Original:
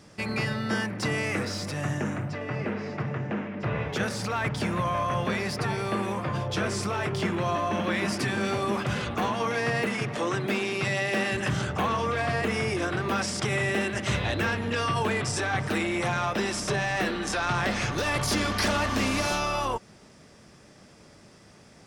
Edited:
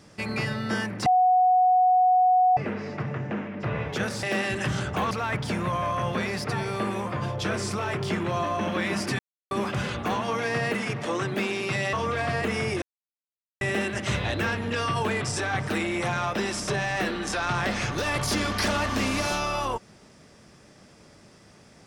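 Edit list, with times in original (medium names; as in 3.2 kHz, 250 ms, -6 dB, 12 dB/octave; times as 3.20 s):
1.06–2.57 s: bleep 736 Hz -16 dBFS
8.31–8.63 s: mute
11.05–11.93 s: move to 4.23 s
12.82–13.61 s: mute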